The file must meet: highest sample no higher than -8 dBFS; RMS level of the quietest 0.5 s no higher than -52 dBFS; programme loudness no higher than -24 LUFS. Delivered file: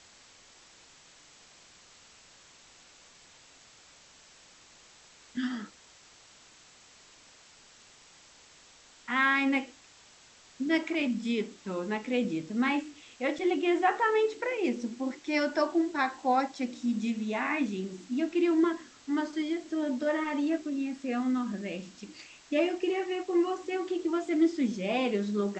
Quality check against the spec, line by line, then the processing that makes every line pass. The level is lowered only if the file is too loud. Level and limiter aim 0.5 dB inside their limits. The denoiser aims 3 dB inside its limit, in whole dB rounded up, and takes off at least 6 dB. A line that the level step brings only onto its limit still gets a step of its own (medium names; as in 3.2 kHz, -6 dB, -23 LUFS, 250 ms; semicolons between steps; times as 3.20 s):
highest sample -14.5 dBFS: pass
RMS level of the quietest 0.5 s -57 dBFS: pass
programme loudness -30.0 LUFS: pass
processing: none needed